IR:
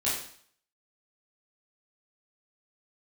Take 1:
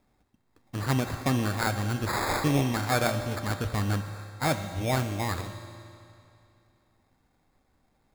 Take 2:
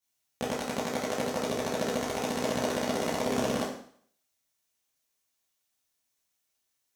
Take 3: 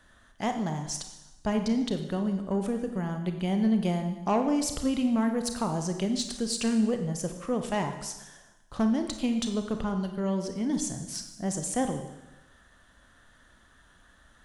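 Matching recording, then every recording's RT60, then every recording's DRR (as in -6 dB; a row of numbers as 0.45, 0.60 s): 2; 2.6, 0.55, 1.0 s; 7.0, -9.5, 6.0 dB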